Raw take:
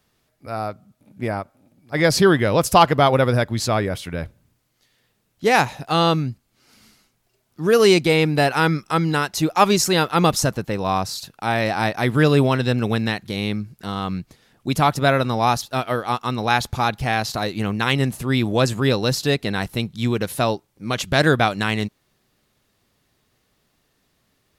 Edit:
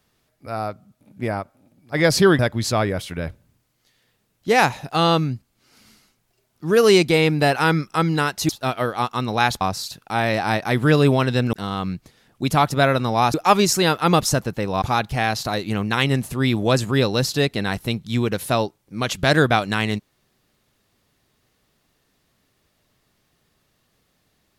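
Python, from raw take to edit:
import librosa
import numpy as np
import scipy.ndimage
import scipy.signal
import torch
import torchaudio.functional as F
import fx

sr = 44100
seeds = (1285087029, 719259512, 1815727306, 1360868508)

y = fx.edit(x, sr, fx.cut(start_s=2.39, length_s=0.96),
    fx.swap(start_s=9.45, length_s=1.48, other_s=15.59, other_length_s=1.12),
    fx.cut(start_s=12.85, length_s=0.93), tone=tone)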